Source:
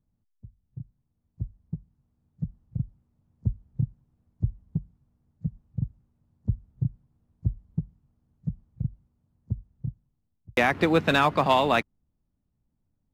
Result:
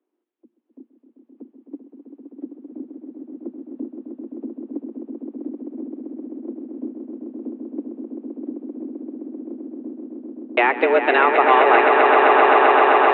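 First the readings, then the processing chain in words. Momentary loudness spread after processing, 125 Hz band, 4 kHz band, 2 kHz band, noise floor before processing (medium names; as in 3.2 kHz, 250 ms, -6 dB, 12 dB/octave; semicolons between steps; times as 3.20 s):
20 LU, under -25 dB, +2.5 dB, +10.5 dB, -76 dBFS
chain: mistuned SSB +120 Hz 190–3100 Hz; echo with a slow build-up 130 ms, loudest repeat 8, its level -5.5 dB; low-pass that closes with the level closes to 2.4 kHz, closed at -17 dBFS; trim +5.5 dB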